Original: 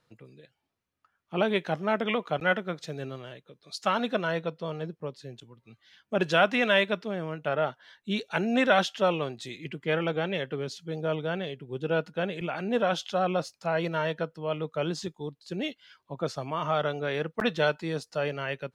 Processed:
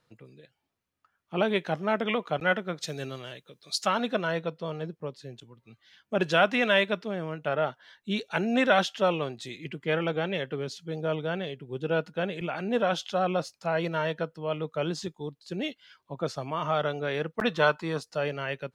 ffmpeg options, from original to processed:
-filter_complex "[0:a]asplit=3[s0][s1][s2];[s0]afade=t=out:st=2.8:d=0.02[s3];[s1]highshelf=f=2600:g=10.5,afade=t=in:st=2.8:d=0.02,afade=t=out:st=3.85:d=0.02[s4];[s2]afade=t=in:st=3.85:d=0.02[s5];[s3][s4][s5]amix=inputs=3:normalize=0,asettb=1/sr,asplit=3[s6][s7][s8];[s6]atrim=end=17.524[s9];[s7]atrim=start=17.52:end=18.01,asetpts=PTS-STARTPTS,afade=t=in:d=0.004:c=qsin,afade=t=out:st=0.486:d=0.004:c=qsin,equalizer=f=1100:t=o:w=0.58:g=12[s10];[s8]atrim=start=18.006[s11];[s9][s10]acrossfade=d=0.004:c1=hsin:c2=qsin[s12];[s12][s11]acrossfade=d=0.004:c1=qsin:c2=hsin"

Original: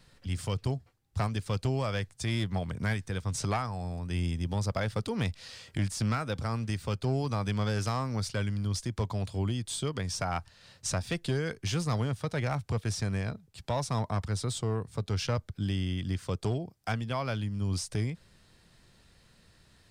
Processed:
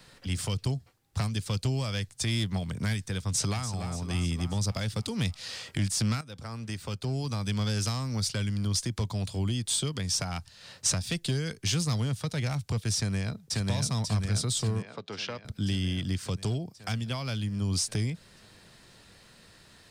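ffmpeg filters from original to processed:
-filter_complex "[0:a]asplit=2[s0][s1];[s1]afade=t=in:st=3.21:d=0.01,afade=t=out:st=3.67:d=0.01,aecho=0:1:290|580|870|1160|1450|1740|2030:0.298538|0.179123|0.107474|0.0644843|0.0386906|0.0232143|0.0139286[s2];[s0][s2]amix=inputs=2:normalize=0,asplit=2[s3][s4];[s4]afade=t=in:st=12.96:d=0.01,afade=t=out:st=13.66:d=0.01,aecho=0:1:540|1080|1620|2160|2700|3240|3780|4320|4860|5400|5940:0.944061|0.61364|0.398866|0.259263|0.168521|0.109538|0.0712|0.04628|0.030082|0.0195533|0.0127096[s5];[s3][s5]amix=inputs=2:normalize=0,asettb=1/sr,asplit=3[s6][s7][s8];[s6]atrim=end=14.824[s9];[s7]atrim=start=14.82:end=15.45,asetpts=PTS-STARTPTS,afade=t=in:d=0.004:c=qsin,afade=t=out:st=0.626:d=0.004:c=qsin,highpass=330,lowpass=3200[s10];[s8]atrim=start=15.446[s11];[s9][s10]acrossfade=d=0.004:c1=hsin:c2=qsin[s12];[s12][s11]acrossfade=d=0.004:c1=qsin:c2=hsin,asplit=2[s13][s14];[s13]atrim=end=6.21,asetpts=PTS-STARTPTS,afade=t=out:st=6.206:d=0.004:c=hsin:silence=0.199526[s15];[s14]atrim=start=6.21,asetpts=PTS-STARTPTS,afade=t=in:d=1.42:silence=0.199526[s16];[s15][s16]concat=n=2:v=0:a=1,lowshelf=f=130:g=-10.5,acrossover=split=220|3000[s17][s18][s19];[s18]acompressor=threshold=0.00398:ratio=4[s20];[s17][s20][s19]amix=inputs=3:normalize=0,volume=2.51"

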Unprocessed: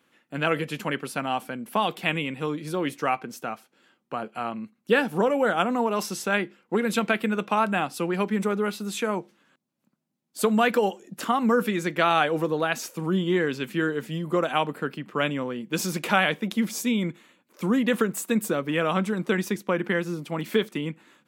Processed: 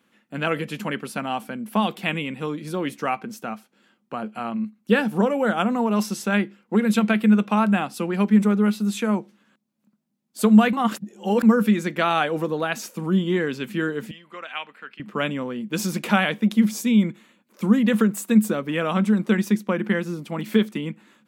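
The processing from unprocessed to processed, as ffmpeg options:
-filter_complex "[0:a]asettb=1/sr,asplit=3[s0][s1][s2];[s0]atrim=end=14.114[s3];[s1]atrim=start=14.11:end=15,asetpts=PTS-STARTPTS,afade=t=in:d=0.004:c=qsin,afade=t=out:st=0.886:d=0.004:c=qsin,bandpass=f=2300:t=q:w=1.6[s4];[s2]atrim=start=14.996[s5];[s3][s4]acrossfade=d=0.004:c1=hsin:c2=qsin[s6];[s6][s5]acrossfade=d=0.004:c1=qsin:c2=hsin,asplit=3[s7][s8][s9];[s7]atrim=end=10.732[s10];[s8]atrim=start=10.728:end=11.432,asetpts=PTS-STARTPTS,areverse[s11];[s9]atrim=start=11.428[s12];[s10][s11]acrossfade=d=0.004:c1=hsin:c2=hsin[s13];[s13][s12]acrossfade=d=0.004:c1=hsin:c2=hsin,equalizer=f=210:w=6.2:g=12.5"

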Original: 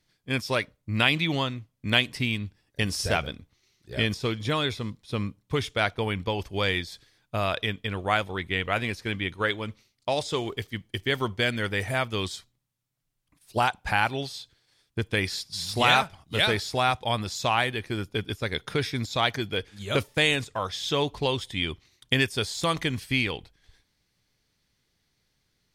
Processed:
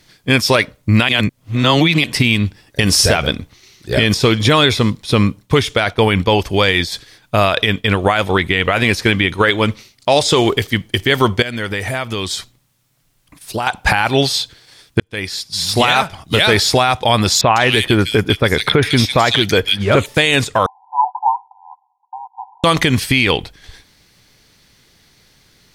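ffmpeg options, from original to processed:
-filter_complex "[0:a]asettb=1/sr,asplit=3[s0][s1][s2];[s0]atrim=end=5.414[s3];[s1]atrim=start=5.41:end=8.19,asetpts=PTS-STARTPTS,afade=t=in:d=0.004:c=qsin,afade=t=out:st=2.776:d=0.004:c=qsin,tremolo=f=6.4:d=0.49[s4];[s2]atrim=start=8.186[s5];[s3][s4]acrossfade=d=0.004:c1=hsin:c2=qsin[s6];[s6][s5]acrossfade=d=0.004:c1=qsin:c2=hsin,asettb=1/sr,asplit=3[s7][s8][s9];[s7]atrim=end=11.424[s10];[s8]atrim=start=11.42:end=13.67,asetpts=PTS-STARTPTS,afade=t=in:d=0.004:c=qsin,afade=t=out:st=2.246:d=0.004:c=qsin,acompressor=threshold=0.0112:ratio=6:attack=3.2:release=140:knee=1:detection=peak[s11];[s9]atrim=start=13.666[s12];[s10][s11]acrossfade=d=0.004:c1=hsin:c2=qsin[s13];[s13][s12]acrossfade=d=0.004:c1=qsin:c2=hsin,asettb=1/sr,asplit=3[s14][s15][s16];[s14]atrim=end=17.414[s17];[s15]atrim=start=17.41:end=20.06,asetpts=PTS-STARTPTS,afade=t=in:d=0.004:c=qsin,afade=t=out:st=2.646:d=0.004:c=qsin,acrossover=split=2600[s18][s19];[s19]adelay=150[s20];[s18][s20]amix=inputs=2:normalize=0,atrim=end_sample=116865[s21];[s16]atrim=start=20.056[s22];[s17][s21]acrossfade=d=0.004:c1=hsin:c2=qsin[s23];[s23][s22]acrossfade=d=0.004:c1=qsin:c2=hsin,asettb=1/sr,asplit=3[s24][s25][s26];[s24]atrim=end=20.664[s27];[s25]atrim=start=20.66:end=22.64,asetpts=PTS-STARTPTS,afade=t=in:d=0.004:c=qsin,afade=t=out:st=1.976:d=0.004:c=qsin,asuperpass=centerf=870:order=20:qfactor=3.1[s28];[s26]atrim=start=22.636[s29];[s27][s28]acrossfade=d=0.004:c1=hsin:c2=qsin[s30];[s30][s29]acrossfade=d=0.004:c1=qsin:c2=hsin,asplit=4[s31][s32][s33][s34];[s31]atrim=end=1.092[s35];[s32]atrim=start=1.088:end=2.042,asetpts=PTS-STARTPTS,areverse[s36];[s33]atrim=start=2.038:end=15,asetpts=PTS-STARTPTS,afade=t=out:st=12.958:d=0.004:c=hsin[s37];[s34]atrim=start=15,asetpts=PTS-STARTPTS,afade=t=in:d=1.61[s38];[s35][s36]acrossfade=d=0.004:c1=hsin:c2=hsin[s39];[s37][s38]concat=n=2:v=0:a=1[s40];[s39][s40]acrossfade=d=0.004:c1=hsin:c2=hsin,lowshelf=f=150:g=-4,acompressor=threshold=0.0224:ratio=1.5,alimiter=level_in=13.3:limit=0.891:release=50:level=0:latency=1,volume=0.891"

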